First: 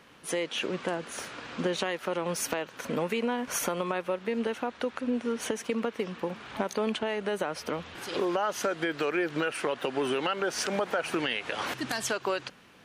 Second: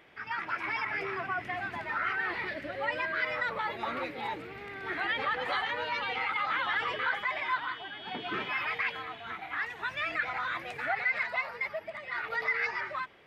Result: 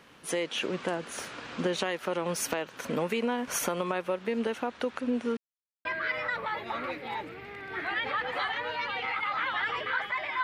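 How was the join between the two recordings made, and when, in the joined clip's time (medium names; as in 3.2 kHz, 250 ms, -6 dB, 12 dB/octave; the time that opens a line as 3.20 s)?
first
5.37–5.85 s: mute
5.85 s: go over to second from 2.98 s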